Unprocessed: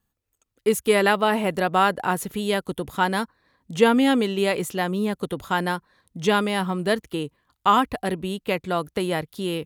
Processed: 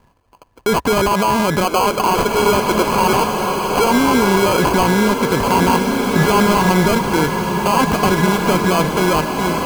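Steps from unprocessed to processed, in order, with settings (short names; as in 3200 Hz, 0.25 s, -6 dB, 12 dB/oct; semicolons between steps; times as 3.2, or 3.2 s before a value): ending faded out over 1.00 s; 1.64–3.87 steep high-pass 310 Hz 48 dB/oct; sample-and-hold 24×; small resonant body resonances 990/1700 Hz, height 12 dB, ringing for 30 ms; maximiser +27 dB; bloom reverb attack 1.87 s, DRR 2.5 dB; gain -7 dB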